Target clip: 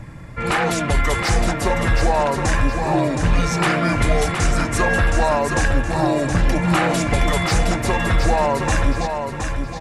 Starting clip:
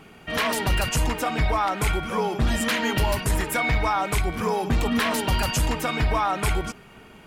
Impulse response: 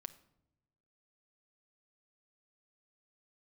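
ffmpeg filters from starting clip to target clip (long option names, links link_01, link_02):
-filter_complex "[0:a]bandreject=frequency=4300:width=22,asetrate=32667,aresample=44100,acrossover=split=150|2800[link_01][link_02][link_03];[link_01]acompressor=mode=upward:threshold=-29dB:ratio=2.5[link_04];[link_03]asoftclip=type=tanh:threshold=-27dB[link_05];[link_04][link_02][link_05]amix=inputs=3:normalize=0,aresample=32000,aresample=44100,asplit=2[link_06][link_07];[link_07]aecho=0:1:719|1438|2157|2876:0.501|0.18|0.065|0.0234[link_08];[link_06][link_08]amix=inputs=2:normalize=0,volume=4.5dB"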